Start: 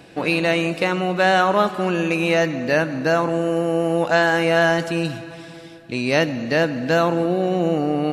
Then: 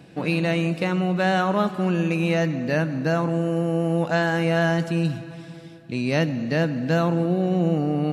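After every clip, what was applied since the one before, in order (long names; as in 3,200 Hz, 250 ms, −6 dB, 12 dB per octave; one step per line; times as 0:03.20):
parametric band 160 Hz +10.5 dB 1.4 octaves
level −6.5 dB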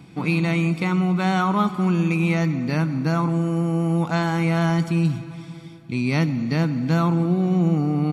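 comb filter 0.9 ms, depth 66%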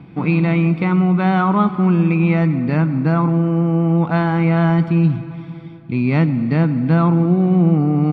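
high-frequency loss of the air 410 metres
level +6 dB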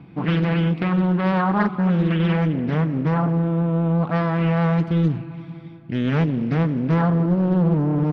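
highs frequency-modulated by the lows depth 0.68 ms
level −4 dB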